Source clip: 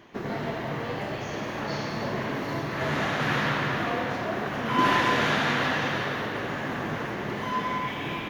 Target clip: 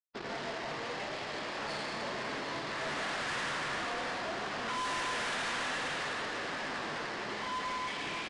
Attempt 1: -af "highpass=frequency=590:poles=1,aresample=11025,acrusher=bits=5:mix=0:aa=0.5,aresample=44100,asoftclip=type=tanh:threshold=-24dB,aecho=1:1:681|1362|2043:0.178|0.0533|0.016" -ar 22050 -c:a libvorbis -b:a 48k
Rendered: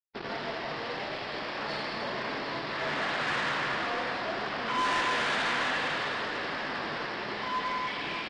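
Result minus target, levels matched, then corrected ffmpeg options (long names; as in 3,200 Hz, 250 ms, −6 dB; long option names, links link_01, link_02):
soft clipping: distortion −7 dB
-af "highpass=frequency=590:poles=1,aresample=11025,acrusher=bits=5:mix=0:aa=0.5,aresample=44100,asoftclip=type=tanh:threshold=-33.5dB,aecho=1:1:681|1362|2043:0.178|0.0533|0.016" -ar 22050 -c:a libvorbis -b:a 48k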